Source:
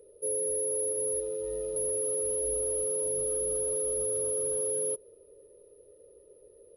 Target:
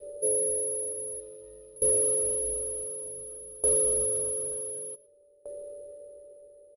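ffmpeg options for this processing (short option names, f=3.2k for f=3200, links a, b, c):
-filter_complex "[0:a]aeval=exprs='val(0)+0.00501*sin(2*PI*580*n/s)':c=same,adynamicequalizer=threshold=0.00501:dfrequency=600:dqfactor=1.2:tfrequency=600:tqfactor=1.2:attack=5:release=100:ratio=0.375:range=2.5:mode=cutabove:tftype=bell,bandreject=f=6k:w=20,asplit=2[a][b];[b]aecho=0:1:112:0.1[c];[a][c]amix=inputs=2:normalize=0,aeval=exprs='val(0)*pow(10,-24*if(lt(mod(0.55*n/s,1),2*abs(0.55)/1000),1-mod(0.55*n/s,1)/(2*abs(0.55)/1000),(mod(0.55*n/s,1)-2*abs(0.55)/1000)/(1-2*abs(0.55)/1000))/20)':c=same,volume=9dB"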